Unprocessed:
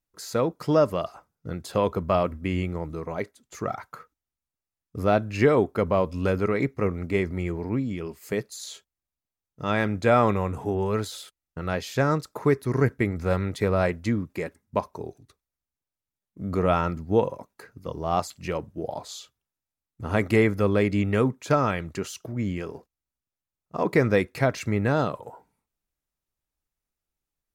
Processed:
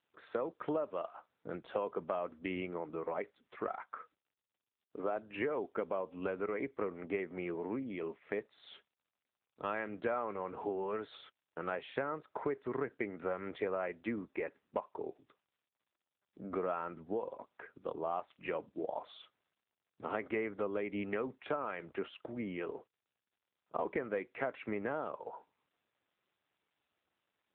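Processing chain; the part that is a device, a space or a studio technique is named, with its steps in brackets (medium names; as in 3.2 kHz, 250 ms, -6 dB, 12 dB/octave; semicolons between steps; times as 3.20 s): 3.86–5.16 s: Chebyshev high-pass 280 Hz, order 2; voicemail (band-pass 350–2700 Hz; compression 6:1, threshold -31 dBFS, peak gain reduction 14.5 dB; trim -1.5 dB; AMR-NB 7.95 kbps 8 kHz)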